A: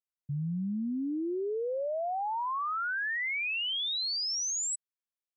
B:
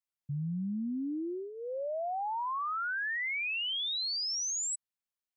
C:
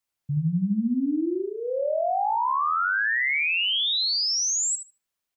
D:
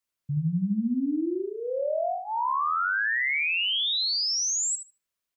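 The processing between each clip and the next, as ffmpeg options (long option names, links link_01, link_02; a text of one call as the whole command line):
ffmpeg -i in.wav -af "equalizer=frequency=430:width_type=o:width=0.26:gain=-11.5,volume=-1.5dB" out.wav
ffmpeg -i in.wav -filter_complex "[0:a]asplit=2[link_01][link_02];[link_02]adelay=75,lowpass=frequency=3600:poles=1,volume=-4dB,asplit=2[link_03][link_04];[link_04]adelay=75,lowpass=frequency=3600:poles=1,volume=0.29,asplit=2[link_05][link_06];[link_06]adelay=75,lowpass=frequency=3600:poles=1,volume=0.29,asplit=2[link_07][link_08];[link_08]adelay=75,lowpass=frequency=3600:poles=1,volume=0.29[link_09];[link_01][link_03][link_05][link_07][link_09]amix=inputs=5:normalize=0,volume=8.5dB" out.wav
ffmpeg -i in.wav -af "asuperstop=centerf=800:order=4:qfactor=5.9,volume=-2dB" out.wav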